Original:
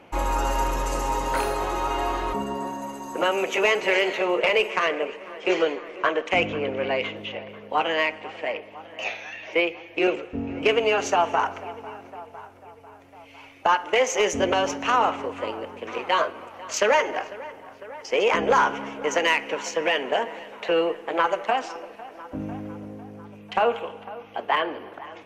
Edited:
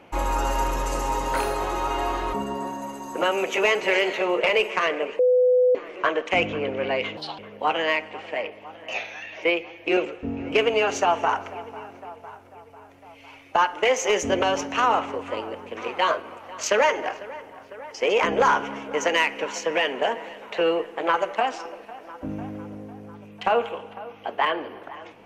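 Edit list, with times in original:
5.19–5.75 s: bleep 501 Hz -14.5 dBFS
7.17–7.49 s: speed 148%

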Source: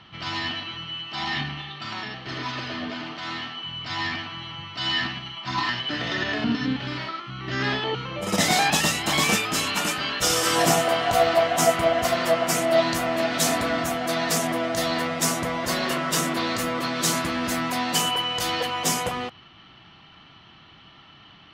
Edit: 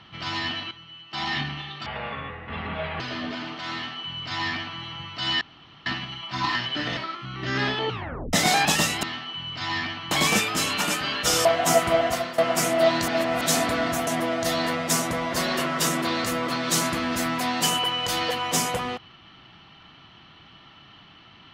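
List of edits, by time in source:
0.71–1.13 s: gain -11 dB
1.86–2.59 s: speed 64%
3.32–4.40 s: copy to 9.08 s
5.00 s: insert room tone 0.45 s
6.11–7.02 s: delete
7.95 s: tape stop 0.43 s
10.42–11.37 s: delete
11.95–12.30 s: fade out, to -14.5 dB
13.00–13.33 s: reverse
13.99–14.39 s: delete

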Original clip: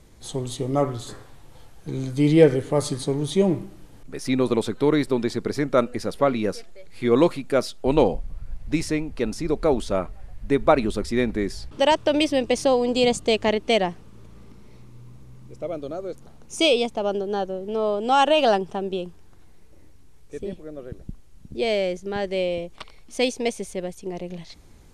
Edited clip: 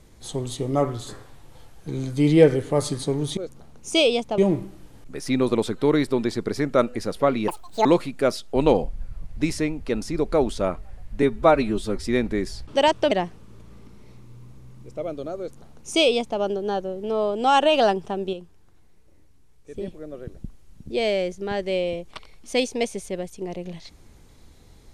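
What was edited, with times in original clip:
6.47–7.16 s: speed 185%
8.30–8.55 s: reverse
10.53–11.07 s: stretch 1.5×
12.15–13.76 s: delete
16.03–17.04 s: copy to 3.37 s
18.98–20.39 s: gain -6 dB

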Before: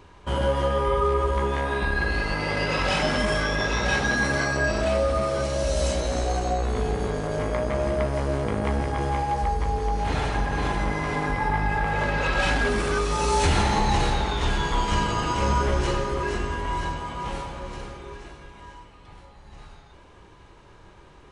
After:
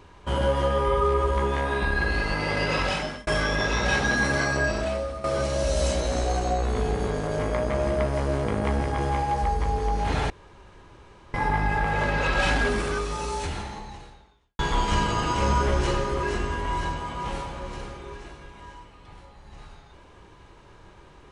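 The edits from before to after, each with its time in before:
2.78–3.27 s: fade out
4.57–5.24 s: fade out, to -14.5 dB
10.30–11.34 s: room tone
12.60–14.59 s: fade out quadratic

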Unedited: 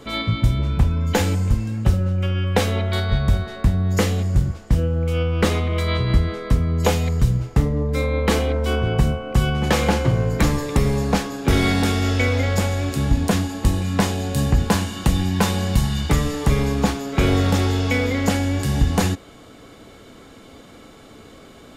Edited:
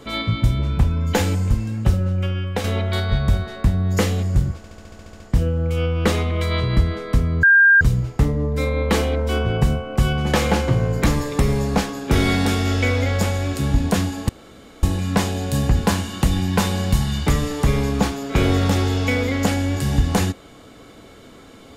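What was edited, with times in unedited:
2.20–2.64 s: fade out, to -7.5 dB
4.57 s: stutter 0.07 s, 10 plays
6.80–7.18 s: bleep 1.6 kHz -8.5 dBFS
13.66 s: insert room tone 0.54 s

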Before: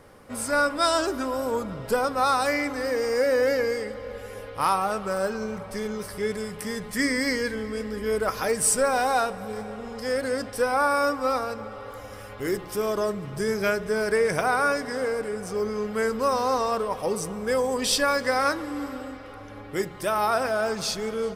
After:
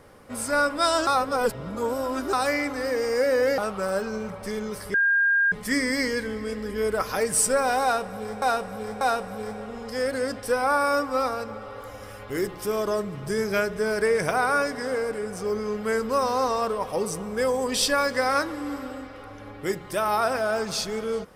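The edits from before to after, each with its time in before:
1.07–2.33 s: reverse
3.58–4.86 s: delete
6.22–6.80 s: bleep 1.61 kHz -17.5 dBFS
9.11–9.70 s: loop, 3 plays

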